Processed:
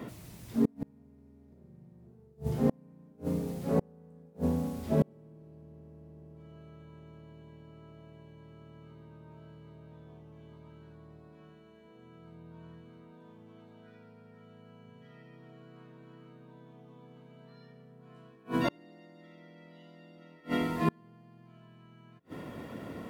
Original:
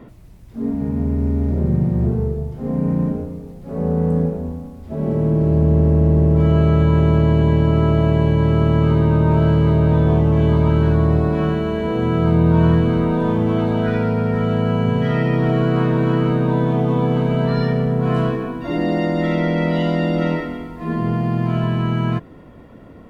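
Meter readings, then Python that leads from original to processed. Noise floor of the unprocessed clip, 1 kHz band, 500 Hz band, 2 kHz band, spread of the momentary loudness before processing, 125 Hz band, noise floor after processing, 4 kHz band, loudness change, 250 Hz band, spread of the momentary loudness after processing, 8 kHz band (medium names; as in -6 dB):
-41 dBFS, -18.5 dB, -20.0 dB, -18.5 dB, 9 LU, -25.5 dB, -58 dBFS, -17.0 dB, -15.5 dB, -19.0 dB, 22 LU, no reading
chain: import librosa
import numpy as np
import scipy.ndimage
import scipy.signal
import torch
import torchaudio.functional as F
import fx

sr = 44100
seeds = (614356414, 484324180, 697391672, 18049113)

y = scipy.signal.sosfilt(scipy.signal.butter(2, 110.0, 'highpass', fs=sr, output='sos'), x)
y = fx.high_shelf(y, sr, hz=2500.0, db=9.5)
y = fx.gate_flip(y, sr, shuts_db=-14.0, range_db=-36)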